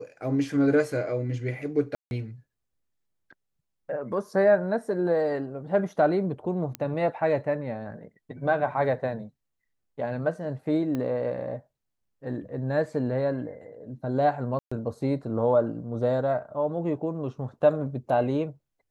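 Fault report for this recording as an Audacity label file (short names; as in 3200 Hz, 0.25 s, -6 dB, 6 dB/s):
1.950000	2.110000	gap 0.161 s
6.750000	6.750000	pop -16 dBFS
10.950000	10.950000	pop -19 dBFS
14.590000	14.710000	gap 0.125 s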